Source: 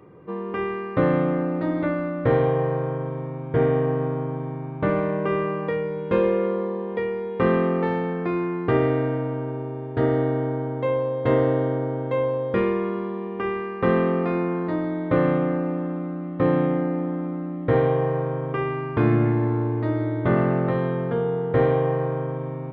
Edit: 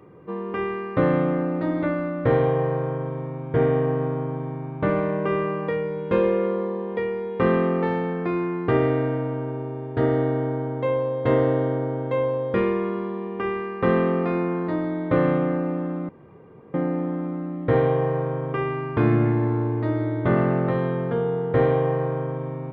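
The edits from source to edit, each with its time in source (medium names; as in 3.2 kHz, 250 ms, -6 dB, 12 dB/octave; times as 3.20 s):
16.09–16.74 s: room tone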